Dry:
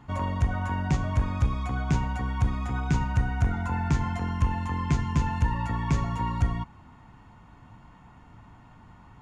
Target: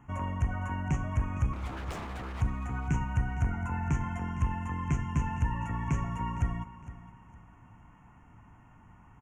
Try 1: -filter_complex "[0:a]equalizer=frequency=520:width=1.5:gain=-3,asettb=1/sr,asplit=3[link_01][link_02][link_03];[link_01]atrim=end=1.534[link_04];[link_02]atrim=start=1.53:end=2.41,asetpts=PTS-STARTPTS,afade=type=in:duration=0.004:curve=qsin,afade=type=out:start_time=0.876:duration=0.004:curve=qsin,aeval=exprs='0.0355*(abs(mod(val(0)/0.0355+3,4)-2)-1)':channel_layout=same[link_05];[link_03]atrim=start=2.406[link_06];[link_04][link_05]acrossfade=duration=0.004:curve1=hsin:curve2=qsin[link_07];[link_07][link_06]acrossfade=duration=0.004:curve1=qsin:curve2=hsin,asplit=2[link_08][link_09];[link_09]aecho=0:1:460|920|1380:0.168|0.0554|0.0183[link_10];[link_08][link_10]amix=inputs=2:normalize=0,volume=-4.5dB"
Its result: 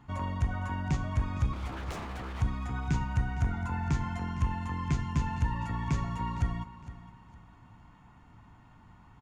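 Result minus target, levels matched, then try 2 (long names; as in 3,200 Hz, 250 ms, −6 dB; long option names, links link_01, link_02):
4,000 Hz band +4.0 dB
-filter_complex "[0:a]asuperstop=centerf=4200:order=8:qfactor=1.5,equalizer=frequency=520:width=1.5:gain=-3,asettb=1/sr,asplit=3[link_01][link_02][link_03];[link_01]atrim=end=1.534[link_04];[link_02]atrim=start=1.53:end=2.41,asetpts=PTS-STARTPTS,afade=type=in:duration=0.004:curve=qsin,afade=type=out:start_time=0.876:duration=0.004:curve=qsin,aeval=exprs='0.0355*(abs(mod(val(0)/0.0355+3,4)-2)-1)':channel_layout=same[link_05];[link_03]atrim=start=2.406[link_06];[link_04][link_05]acrossfade=duration=0.004:curve1=hsin:curve2=qsin[link_07];[link_07][link_06]acrossfade=duration=0.004:curve1=qsin:curve2=hsin,asplit=2[link_08][link_09];[link_09]aecho=0:1:460|920|1380:0.168|0.0554|0.0183[link_10];[link_08][link_10]amix=inputs=2:normalize=0,volume=-4.5dB"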